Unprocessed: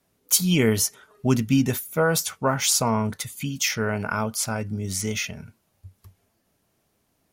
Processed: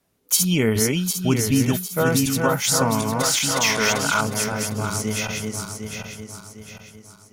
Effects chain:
feedback delay that plays each chunk backwards 377 ms, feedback 62%, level −3 dB
0:03.23–0:04.21: mid-hump overdrive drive 14 dB, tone 5,200 Hz, clips at −9 dBFS

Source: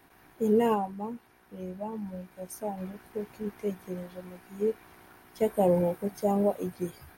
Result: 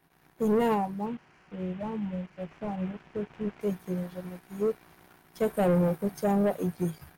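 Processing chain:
0:01.06–0:03.61: linear delta modulator 16 kbit/s, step −47 dBFS
leveller curve on the samples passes 1
parametric band 160 Hz +12 dB 0.27 octaves
leveller curve on the samples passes 1
level −5.5 dB

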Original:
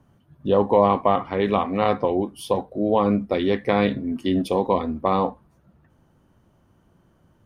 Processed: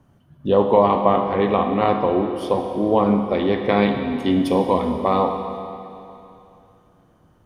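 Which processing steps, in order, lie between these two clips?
0:01.02–0:03.69: low-pass filter 3,500 Hz 6 dB per octave
four-comb reverb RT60 2.8 s, combs from 25 ms, DRR 5 dB
level +1.5 dB

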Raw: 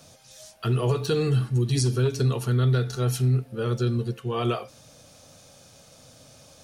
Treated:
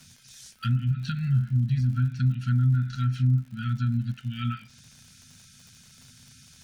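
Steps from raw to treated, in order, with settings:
treble cut that deepens with the level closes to 840 Hz, closed at −17.5 dBFS
brick-wall band-stop 260–1,300 Hz
surface crackle 93 per second −42 dBFS

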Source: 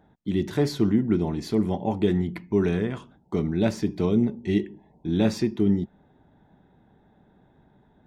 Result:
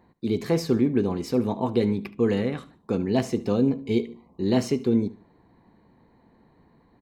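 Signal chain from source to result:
repeating echo 84 ms, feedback 32%, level −18.5 dB
speed change +15%

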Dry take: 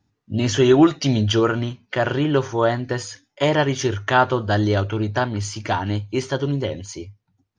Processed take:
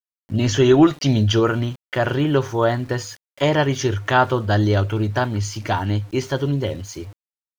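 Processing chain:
low-shelf EQ 78 Hz +8.5 dB
centre clipping without the shift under −41 dBFS

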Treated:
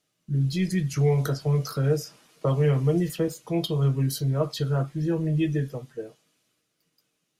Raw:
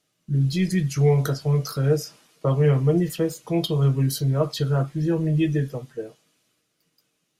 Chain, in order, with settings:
0:00.93–0:03.28: multiband upward and downward compressor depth 40%
level −3 dB

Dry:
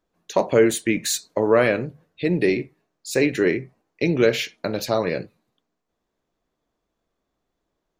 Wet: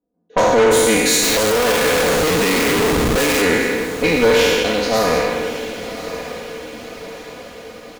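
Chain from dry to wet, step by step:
peak hold with a decay on every bin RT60 2.04 s
low-pass that shuts in the quiet parts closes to 370 Hz, open at −14 dBFS
high-pass filter 260 Hz 6 dB per octave
comb filter 4.1 ms, depth 98%
tube saturation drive 14 dB, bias 0.65
0:01.23–0:03.42: comparator with hysteresis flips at −35.5 dBFS
feedback delay with all-pass diffusion 1,088 ms, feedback 53%, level −12 dB
level +5 dB

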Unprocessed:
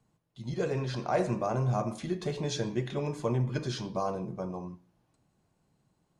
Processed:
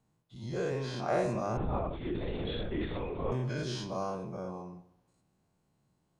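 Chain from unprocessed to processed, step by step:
every bin's largest magnitude spread in time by 120 ms
on a send at −16.5 dB: convolution reverb RT60 0.90 s, pre-delay 85 ms
0:01.57–0:03.32: on the sum: linear-prediction vocoder at 8 kHz whisper
level −7.5 dB

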